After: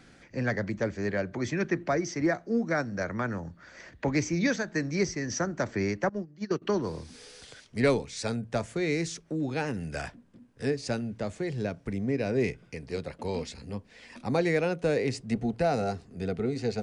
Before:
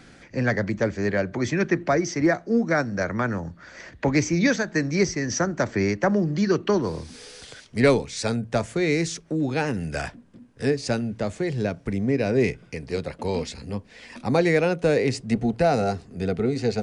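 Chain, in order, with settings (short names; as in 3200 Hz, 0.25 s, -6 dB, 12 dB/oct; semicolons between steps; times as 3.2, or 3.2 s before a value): 6.09–6.62 gate -19 dBFS, range -21 dB; gain -6 dB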